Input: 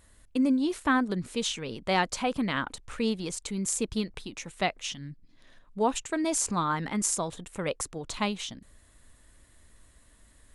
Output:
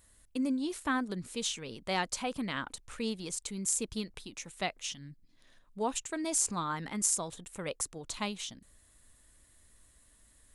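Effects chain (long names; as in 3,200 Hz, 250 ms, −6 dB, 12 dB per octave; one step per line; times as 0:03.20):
high-shelf EQ 4,900 Hz +9 dB
level −7 dB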